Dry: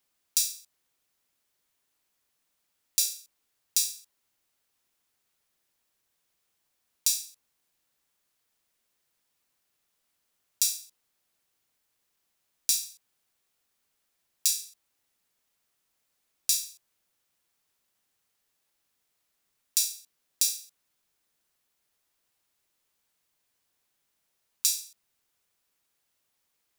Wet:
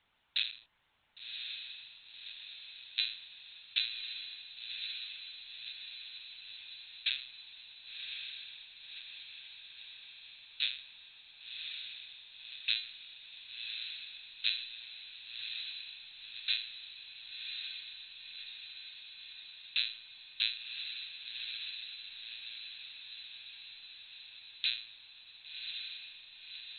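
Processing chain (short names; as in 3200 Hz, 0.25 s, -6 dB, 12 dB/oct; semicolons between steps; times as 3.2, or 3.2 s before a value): HPF 500 Hz 12 dB/oct; LPC vocoder at 8 kHz pitch kept; on a send: diffused feedback echo 1.093 s, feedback 66%, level -4.5 dB; on the sum: gain +10 dB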